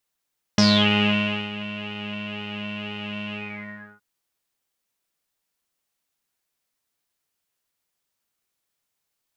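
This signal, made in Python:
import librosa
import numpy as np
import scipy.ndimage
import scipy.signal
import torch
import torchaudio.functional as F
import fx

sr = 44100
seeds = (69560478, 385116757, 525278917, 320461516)

y = fx.sub_patch_pwm(sr, seeds[0], note=56, wave2='saw', interval_st=0, detune_cents=16, level2_db=-9.0, sub_db=-9.0, noise_db=-30.0, kind='lowpass', cutoff_hz=1400.0, q=12.0, env_oct=2.0, env_decay_s=0.28, env_sustain_pct=50, attack_ms=2.5, decay_s=0.92, sustain_db=-17, release_s=0.67, note_s=2.75, lfo_hz=2.0, width_pct=44, width_swing_pct=7)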